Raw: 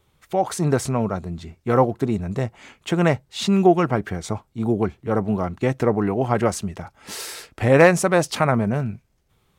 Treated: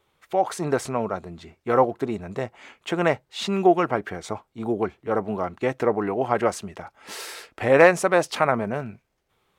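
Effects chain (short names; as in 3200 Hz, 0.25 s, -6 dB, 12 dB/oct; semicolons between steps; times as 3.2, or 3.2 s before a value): tone controls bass -12 dB, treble -6 dB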